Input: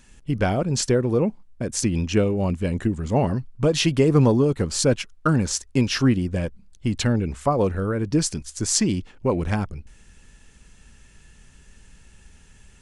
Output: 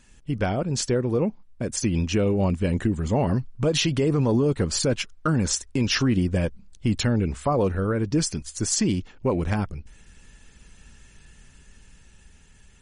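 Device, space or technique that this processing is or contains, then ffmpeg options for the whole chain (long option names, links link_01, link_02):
low-bitrate web radio: -af "dynaudnorm=framelen=300:gausssize=13:maxgain=15dB,alimiter=limit=-10.5dB:level=0:latency=1:release=53,volume=-2.5dB" -ar 48000 -c:a libmp3lame -b:a 40k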